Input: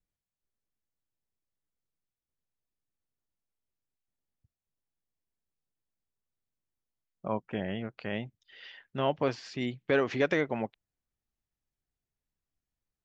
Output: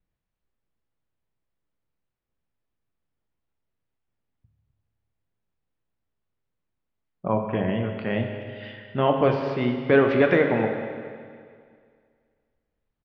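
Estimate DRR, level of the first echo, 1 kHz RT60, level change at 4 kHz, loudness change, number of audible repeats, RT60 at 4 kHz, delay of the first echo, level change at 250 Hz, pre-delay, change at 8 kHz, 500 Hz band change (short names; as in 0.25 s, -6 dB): 3.5 dB, -16.0 dB, 2.1 s, +3.5 dB, +8.5 dB, 1, 2.0 s, 0.255 s, +9.5 dB, 12 ms, n/a, +9.5 dB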